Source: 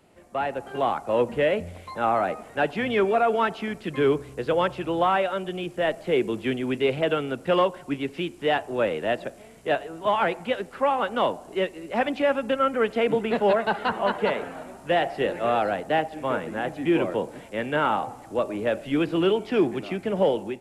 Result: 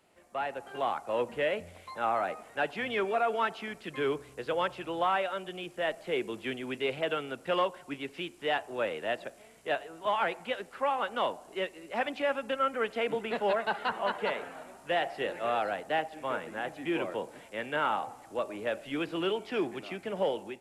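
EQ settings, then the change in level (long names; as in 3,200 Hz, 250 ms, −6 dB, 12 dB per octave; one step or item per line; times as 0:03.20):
low-shelf EQ 440 Hz −10 dB
−4.0 dB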